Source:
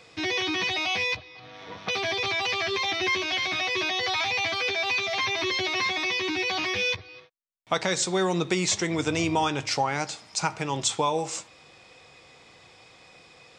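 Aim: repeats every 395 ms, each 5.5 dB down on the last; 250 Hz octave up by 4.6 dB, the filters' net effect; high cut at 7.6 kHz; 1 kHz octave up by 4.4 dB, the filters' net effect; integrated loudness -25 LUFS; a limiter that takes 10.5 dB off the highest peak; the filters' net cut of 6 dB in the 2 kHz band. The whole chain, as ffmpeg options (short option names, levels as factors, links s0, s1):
-af "lowpass=7600,equalizer=f=250:t=o:g=7,equalizer=f=1000:t=o:g=7,equalizer=f=2000:t=o:g=-9,alimiter=limit=0.119:level=0:latency=1,aecho=1:1:395|790|1185|1580|1975|2370|2765:0.531|0.281|0.149|0.079|0.0419|0.0222|0.0118,volume=1.26"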